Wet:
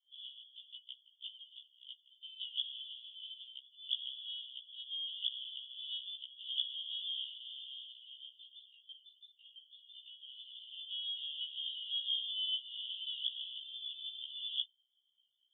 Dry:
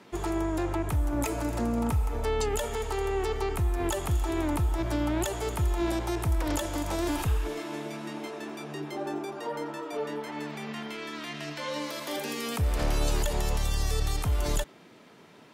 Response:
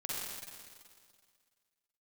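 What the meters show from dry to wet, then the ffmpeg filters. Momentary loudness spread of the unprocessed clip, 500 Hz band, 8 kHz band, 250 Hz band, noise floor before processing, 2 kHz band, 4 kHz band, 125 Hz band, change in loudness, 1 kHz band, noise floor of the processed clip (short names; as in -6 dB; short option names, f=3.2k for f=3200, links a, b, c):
8 LU, under -40 dB, under -40 dB, under -40 dB, -53 dBFS, -26.0 dB, +4.5 dB, under -40 dB, -9.0 dB, under -40 dB, -76 dBFS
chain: -af "asuperpass=centerf=3200:order=12:qfactor=4.9,anlmdn=0.000158,afftfilt=real='re*1.73*eq(mod(b,3),0)':imag='im*1.73*eq(mod(b,3),0)':win_size=2048:overlap=0.75,volume=10.5dB"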